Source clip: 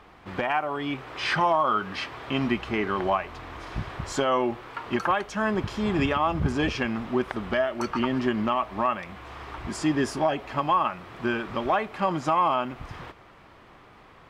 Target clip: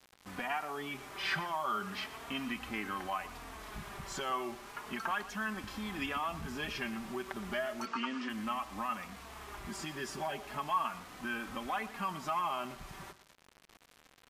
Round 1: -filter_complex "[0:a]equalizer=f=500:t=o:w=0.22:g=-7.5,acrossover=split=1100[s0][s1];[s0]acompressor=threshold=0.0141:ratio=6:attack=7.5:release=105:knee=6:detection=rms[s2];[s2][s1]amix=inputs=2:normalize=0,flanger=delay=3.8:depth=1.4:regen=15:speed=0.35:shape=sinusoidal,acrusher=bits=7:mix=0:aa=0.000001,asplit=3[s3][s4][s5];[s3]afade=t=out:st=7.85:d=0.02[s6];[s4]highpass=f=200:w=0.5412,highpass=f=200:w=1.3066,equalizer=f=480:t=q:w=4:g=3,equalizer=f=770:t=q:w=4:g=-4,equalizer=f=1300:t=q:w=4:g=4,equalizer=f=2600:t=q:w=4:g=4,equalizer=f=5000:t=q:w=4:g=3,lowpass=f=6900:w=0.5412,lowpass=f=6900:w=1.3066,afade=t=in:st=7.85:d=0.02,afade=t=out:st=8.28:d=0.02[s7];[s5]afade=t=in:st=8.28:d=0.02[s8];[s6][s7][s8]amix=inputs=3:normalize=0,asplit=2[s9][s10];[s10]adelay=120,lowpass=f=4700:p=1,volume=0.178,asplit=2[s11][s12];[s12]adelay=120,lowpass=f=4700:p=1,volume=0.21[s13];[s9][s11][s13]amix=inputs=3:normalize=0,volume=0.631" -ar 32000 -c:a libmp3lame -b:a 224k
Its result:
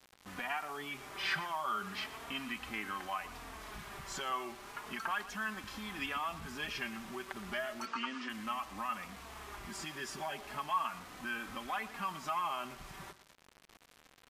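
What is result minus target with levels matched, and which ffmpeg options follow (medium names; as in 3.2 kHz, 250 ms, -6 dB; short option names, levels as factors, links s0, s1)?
compression: peak gain reduction +5.5 dB
-filter_complex "[0:a]equalizer=f=500:t=o:w=0.22:g=-7.5,acrossover=split=1100[s0][s1];[s0]acompressor=threshold=0.0299:ratio=6:attack=7.5:release=105:knee=6:detection=rms[s2];[s2][s1]amix=inputs=2:normalize=0,flanger=delay=3.8:depth=1.4:regen=15:speed=0.35:shape=sinusoidal,acrusher=bits=7:mix=0:aa=0.000001,asplit=3[s3][s4][s5];[s3]afade=t=out:st=7.85:d=0.02[s6];[s4]highpass=f=200:w=0.5412,highpass=f=200:w=1.3066,equalizer=f=480:t=q:w=4:g=3,equalizer=f=770:t=q:w=4:g=-4,equalizer=f=1300:t=q:w=4:g=4,equalizer=f=2600:t=q:w=4:g=4,equalizer=f=5000:t=q:w=4:g=3,lowpass=f=6900:w=0.5412,lowpass=f=6900:w=1.3066,afade=t=in:st=7.85:d=0.02,afade=t=out:st=8.28:d=0.02[s7];[s5]afade=t=in:st=8.28:d=0.02[s8];[s6][s7][s8]amix=inputs=3:normalize=0,asplit=2[s9][s10];[s10]adelay=120,lowpass=f=4700:p=1,volume=0.178,asplit=2[s11][s12];[s12]adelay=120,lowpass=f=4700:p=1,volume=0.21[s13];[s9][s11][s13]amix=inputs=3:normalize=0,volume=0.631" -ar 32000 -c:a libmp3lame -b:a 224k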